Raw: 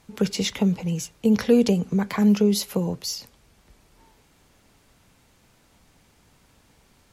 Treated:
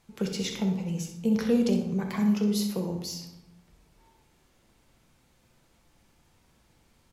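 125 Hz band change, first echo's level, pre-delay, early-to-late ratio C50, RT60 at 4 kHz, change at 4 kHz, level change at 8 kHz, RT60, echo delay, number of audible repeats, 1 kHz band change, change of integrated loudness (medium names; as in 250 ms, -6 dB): -5.5 dB, -9.5 dB, 5 ms, 5.5 dB, 0.60 s, -6.5 dB, -6.5 dB, 0.95 s, 64 ms, 1, -6.0 dB, -5.5 dB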